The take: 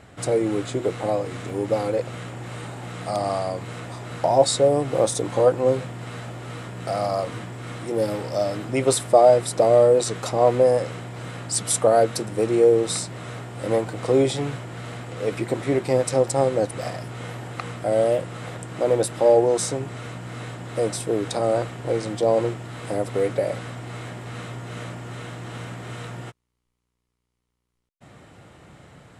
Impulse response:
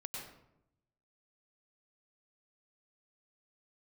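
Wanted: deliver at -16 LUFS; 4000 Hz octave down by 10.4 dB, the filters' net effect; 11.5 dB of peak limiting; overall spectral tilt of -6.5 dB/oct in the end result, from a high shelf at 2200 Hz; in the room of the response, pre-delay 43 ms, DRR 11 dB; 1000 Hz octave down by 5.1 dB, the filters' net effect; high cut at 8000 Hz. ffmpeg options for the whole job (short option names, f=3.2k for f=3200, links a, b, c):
-filter_complex "[0:a]lowpass=8k,equalizer=f=1k:t=o:g=-7,highshelf=f=2.2k:g=-6.5,equalizer=f=4k:t=o:g=-6,alimiter=limit=-17dB:level=0:latency=1,asplit=2[a][b];[1:a]atrim=start_sample=2205,adelay=43[c];[b][c]afir=irnorm=-1:irlink=0,volume=-9.5dB[d];[a][d]amix=inputs=2:normalize=0,volume=12.5dB"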